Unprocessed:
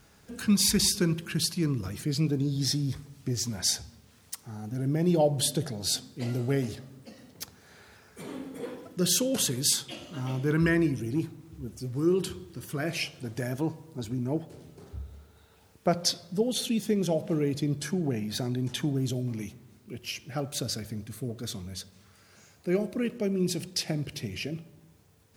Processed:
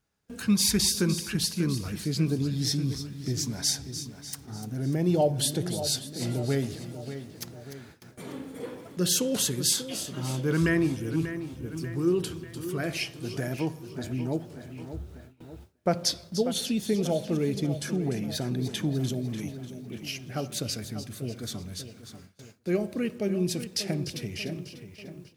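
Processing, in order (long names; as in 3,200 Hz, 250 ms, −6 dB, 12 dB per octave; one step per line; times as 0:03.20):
echo with a time of its own for lows and highs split 3,000 Hz, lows 590 ms, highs 297 ms, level −11 dB
noise gate with hold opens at −37 dBFS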